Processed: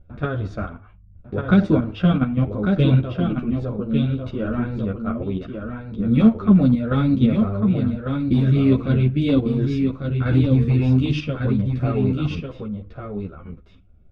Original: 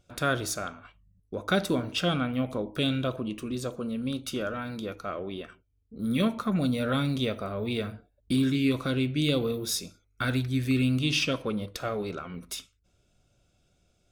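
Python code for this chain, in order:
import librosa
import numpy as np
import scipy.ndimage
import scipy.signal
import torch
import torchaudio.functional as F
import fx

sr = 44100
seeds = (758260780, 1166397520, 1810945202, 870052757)

p1 = fx.riaa(x, sr, side='playback')
p2 = np.clip(p1, -10.0 ** (-11.0 / 20.0), 10.0 ** (-11.0 / 20.0))
p3 = fx.high_shelf(p2, sr, hz=5500.0, db=-10.5)
p4 = fx.level_steps(p3, sr, step_db=10)
p5 = fx.env_lowpass(p4, sr, base_hz=2400.0, full_db=-16.0)
p6 = p5 + fx.echo_single(p5, sr, ms=1148, db=-5.5, dry=0)
p7 = fx.ensemble(p6, sr)
y = F.gain(torch.from_numpy(p7), 9.0).numpy()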